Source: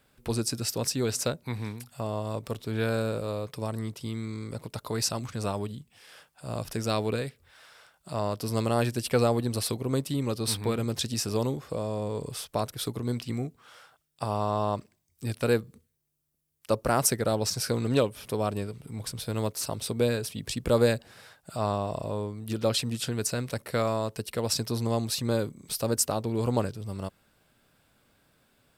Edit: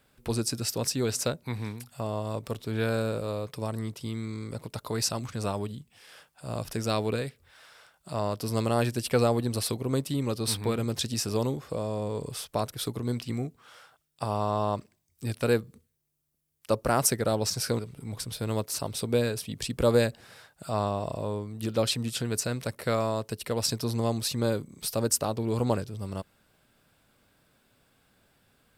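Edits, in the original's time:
17.79–18.66 cut

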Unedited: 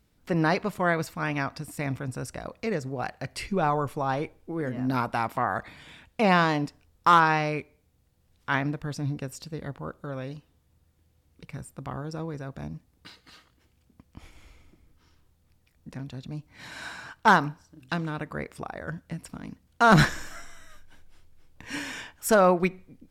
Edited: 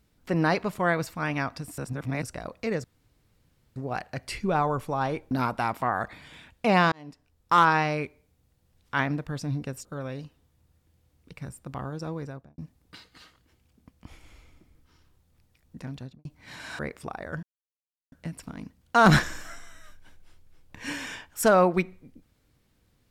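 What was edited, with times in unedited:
1.78–2.23 reverse
2.84 insert room tone 0.92 s
4.39–4.86 cut
6.47–7.24 fade in
9.4–9.97 cut
12.34–12.7 studio fade out
16.1–16.37 studio fade out
16.91–18.34 cut
18.98 insert silence 0.69 s

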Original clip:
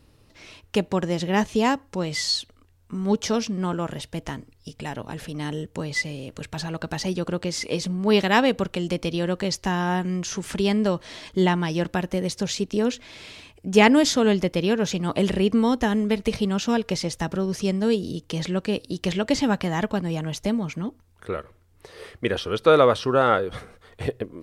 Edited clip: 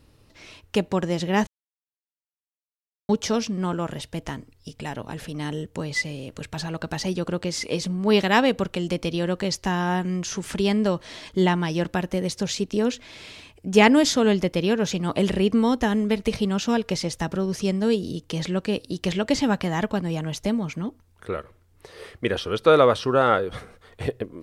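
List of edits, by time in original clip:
1.47–3.09 mute

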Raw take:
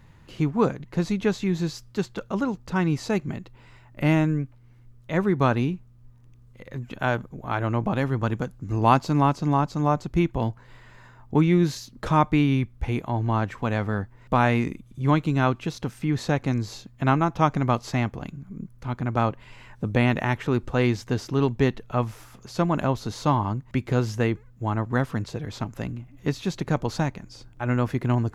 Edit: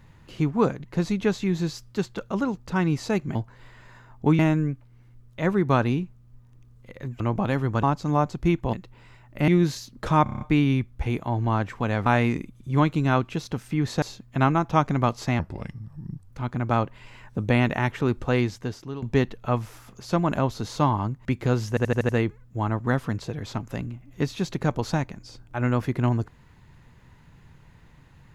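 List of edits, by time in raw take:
3.35–4.1 swap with 10.44–11.48
6.91–7.68 cut
8.31–9.54 cut
12.23 stutter 0.03 s, 7 plays
13.88–14.37 cut
16.33–16.68 cut
18.05–18.76 speed 78%
20.75–21.48 fade out, to -16 dB
24.15 stutter 0.08 s, 6 plays

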